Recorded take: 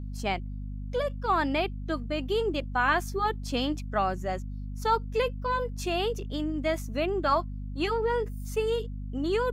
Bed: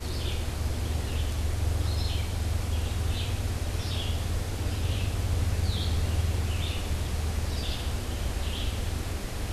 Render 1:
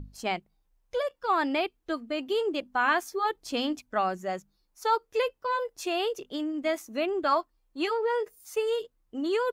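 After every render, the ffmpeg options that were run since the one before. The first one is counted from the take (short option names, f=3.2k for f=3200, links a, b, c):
-af "bandreject=f=50:t=h:w=6,bandreject=f=100:t=h:w=6,bandreject=f=150:t=h:w=6,bandreject=f=200:t=h:w=6,bandreject=f=250:t=h:w=6"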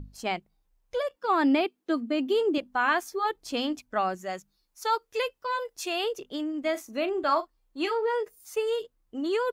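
-filter_complex "[0:a]asettb=1/sr,asplit=3[a][b][c];[a]atrim=end=1.164[d];[b]atrim=start=1.16:end=2.58,asetpts=PTS-STARTPTS,afade=t=in:d=0.004:c=qsin,afade=t=out:st=1.416:d=0.004:c=qsin,highpass=f=240:t=q:w=3[e];[c]atrim=start=2.576[f];[d][e]acrossfade=d=0.004:c1=hsin:c2=qsin[g];[g][f]acrossfade=d=0.004:c1=qsin:c2=hsin,asettb=1/sr,asplit=3[h][i][j];[h]atrim=end=4.154[k];[i]atrim=start=4.15:end=6.04,asetpts=PTS-STARTPTS,afade=t=in:d=0.004:c=qsin,afade=t=out:st=1.886:d=0.004:c=qsin,tiltshelf=f=1.4k:g=-3.5[l];[j]atrim=start=6.036[m];[k][l]acrossfade=d=0.004:c1=hsin:c2=qsin[n];[n][m]acrossfade=d=0.004:c1=qsin:c2=hsin,asettb=1/sr,asplit=3[o][p][q];[o]atrim=end=6.714[r];[p]atrim=start=6.71:end=8.14,asetpts=PTS-STARTPTS,afade=t=in:d=0.004:c=qsin,afade=t=out:st=1.426:d=0.004:c=qsin,asplit=2[s][t];[t]adelay=39,volume=-13dB[u];[s][u]amix=inputs=2:normalize=0,atrim=end_sample=63063[v];[q]atrim=start=8.136[w];[r][v]acrossfade=d=0.004:c1=hsin:c2=qsin[x];[x][w]acrossfade=d=0.004:c1=qsin:c2=hsin"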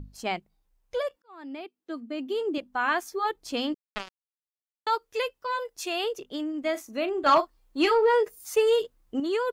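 -filter_complex "[0:a]asettb=1/sr,asplit=3[a][b][c];[a]atrim=end=3.744[d];[b]atrim=start=3.74:end=4.87,asetpts=PTS-STARTPTS,afade=t=in:d=0.004:c=qsin,afade=t=out:st=1.126:d=0.004:c=qsin,acrusher=bits=2:mix=0:aa=0.5[e];[c]atrim=start=4.866[f];[d][e]acrossfade=d=0.004:c1=hsin:c2=qsin[g];[g][f]acrossfade=d=0.004:c1=qsin:c2=hsin,asettb=1/sr,asplit=3[h][i][j];[h]atrim=end=7.264[k];[i]atrim=start=7.26:end=9.2,asetpts=PTS-STARTPTS,afade=t=in:d=0.004:c=qsin,afade=t=out:st=1.936:d=0.004:c=qsin,aeval=exprs='0.224*sin(PI/2*1.41*val(0)/0.224)':c=same[l];[j]atrim=start=9.196[m];[k][l]acrossfade=d=0.004:c1=hsin:c2=qsin[n];[n][m]acrossfade=d=0.004:c1=qsin:c2=hsin,asplit=2[o][p];[o]atrim=end=1.22,asetpts=PTS-STARTPTS,afade=t=out:st=1.216:d=0.004:c=hsin[q];[p]atrim=start=1.22,asetpts=PTS-STARTPTS,afade=t=in:d=1.92[r];[q][r]concat=n=2:v=0:a=1"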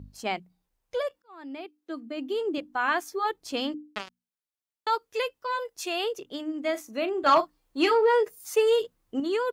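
-af "highpass=54,bandreject=f=60:t=h:w=6,bandreject=f=120:t=h:w=6,bandreject=f=180:t=h:w=6,bandreject=f=240:t=h:w=6,bandreject=f=300:t=h:w=6"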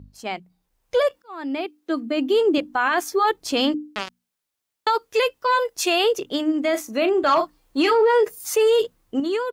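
-af "dynaudnorm=f=310:g=5:m=12dB,alimiter=limit=-11.5dB:level=0:latency=1:release=12"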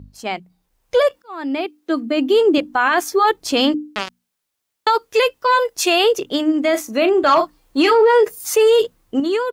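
-af "volume=4.5dB"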